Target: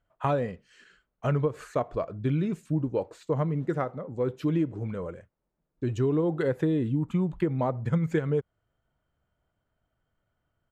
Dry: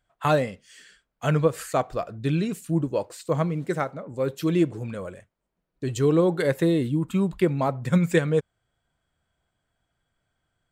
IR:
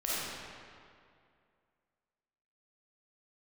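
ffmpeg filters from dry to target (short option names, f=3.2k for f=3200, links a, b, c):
-af "lowpass=f=1.4k:p=1,acompressor=threshold=-22dB:ratio=6,asetrate=41625,aresample=44100,atempo=1.05946"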